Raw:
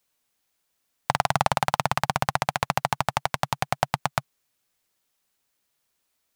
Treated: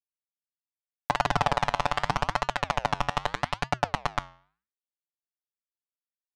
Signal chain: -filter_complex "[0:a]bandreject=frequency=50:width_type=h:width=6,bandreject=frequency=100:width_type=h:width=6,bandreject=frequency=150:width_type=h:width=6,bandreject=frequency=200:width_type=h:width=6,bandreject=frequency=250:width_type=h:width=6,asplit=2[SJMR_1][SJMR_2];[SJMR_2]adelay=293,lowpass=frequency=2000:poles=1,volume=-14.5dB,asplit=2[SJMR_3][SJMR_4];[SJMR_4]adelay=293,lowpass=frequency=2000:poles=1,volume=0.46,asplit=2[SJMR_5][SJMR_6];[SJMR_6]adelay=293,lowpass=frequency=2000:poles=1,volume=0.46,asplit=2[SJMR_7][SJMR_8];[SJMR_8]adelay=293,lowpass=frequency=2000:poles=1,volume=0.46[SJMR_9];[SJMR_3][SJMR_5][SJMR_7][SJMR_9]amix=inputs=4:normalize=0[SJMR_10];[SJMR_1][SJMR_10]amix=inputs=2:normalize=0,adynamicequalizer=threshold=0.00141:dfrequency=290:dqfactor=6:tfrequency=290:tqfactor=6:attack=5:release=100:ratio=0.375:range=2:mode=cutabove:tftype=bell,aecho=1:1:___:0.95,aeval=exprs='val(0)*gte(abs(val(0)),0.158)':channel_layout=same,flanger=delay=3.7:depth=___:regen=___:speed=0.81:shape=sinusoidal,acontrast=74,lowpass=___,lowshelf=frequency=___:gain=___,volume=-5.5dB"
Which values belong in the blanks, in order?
6.9, 7.8, -86, 4900, 120, 10.5